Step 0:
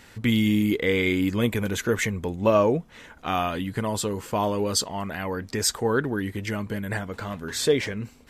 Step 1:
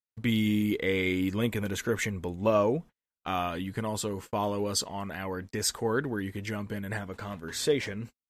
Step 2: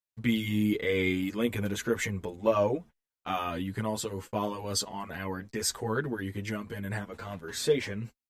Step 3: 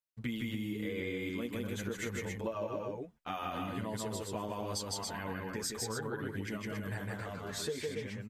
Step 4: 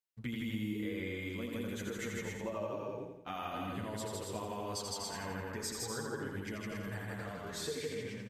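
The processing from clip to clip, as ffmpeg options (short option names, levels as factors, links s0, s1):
-af "agate=range=0.00316:threshold=0.0158:ratio=16:detection=peak,volume=0.562"
-filter_complex "[0:a]asplit=2[s0][s1];[s1]adelay=8,afreqshift=1.9[s2];[s0][s2]amix=inputs=2:normalize=1,volume=1.26"
-af "aecho=1:1:157.4|277:0.794|0.501,acompressor=threshold=0.0355:ratio=10,volume=0.596"
-af "aecho=1:1:85|170|255|340|425|510:0.562|0.276|0.135|0.0662|0.0324|0.0159,volume=0.708"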